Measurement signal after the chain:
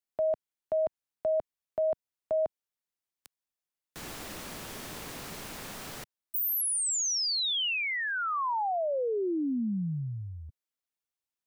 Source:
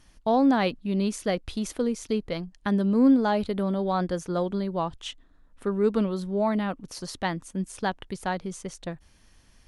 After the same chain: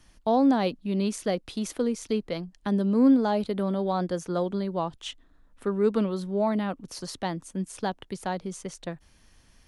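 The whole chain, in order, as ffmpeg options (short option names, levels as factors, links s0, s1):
-filter_complex "[0:a]acrossover=split=130|1000|3200[s0][s1][s2][s3];[s0]acompressor=threshold=0.00251:ratio=6[s4];[s2]alimiter=level_in=2.24:limit=0.0631:level=0:latency=1:release=319,volume=0.447[s5];[s4][s1][s5][s3]amix=inputs=4:normalize=0"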